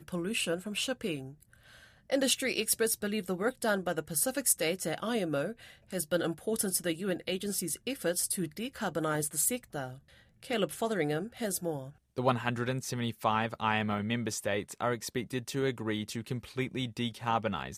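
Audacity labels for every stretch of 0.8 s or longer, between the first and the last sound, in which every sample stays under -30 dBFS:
1.160000	2.120000	silence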